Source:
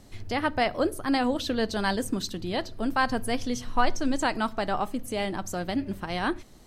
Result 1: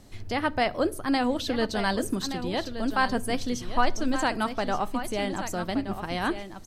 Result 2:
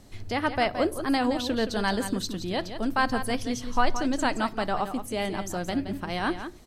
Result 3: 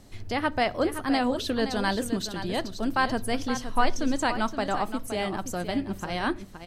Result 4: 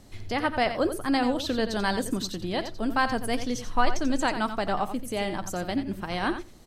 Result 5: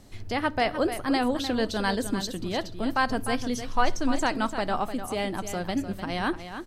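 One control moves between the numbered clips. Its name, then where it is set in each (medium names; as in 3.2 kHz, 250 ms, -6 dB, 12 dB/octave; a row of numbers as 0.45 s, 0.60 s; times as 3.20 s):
delay, time: 1173 ms, 171 ms, 519 ms, 88 ms, 301 ms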